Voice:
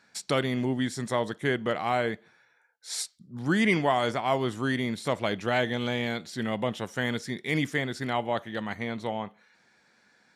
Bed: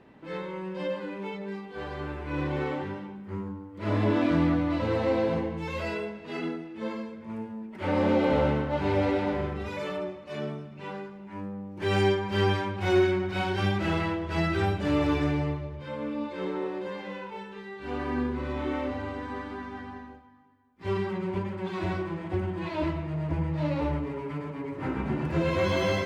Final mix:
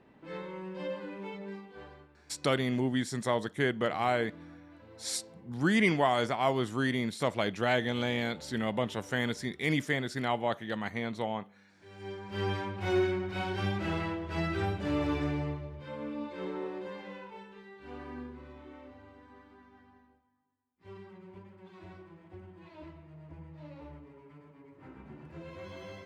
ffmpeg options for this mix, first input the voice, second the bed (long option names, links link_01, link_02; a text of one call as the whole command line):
ffmpeg -i stem1.wav -i stem2.wav -filter_complex "[0:a]adelay=2150,volume=-2dB[link_01];[1:a]volume=15.5dB,afade=type=out:start_time=1.49:duration=0.59:silence=0.0891251,afade=type=in:start_time=11.98:duration=0.66:silence=0.0891251,afade=type=out:start_time=16.77:duration=1.87:silence=0.199526[link_02];[link_01][link_02]amix=inputs=2:normalize=0" out.wav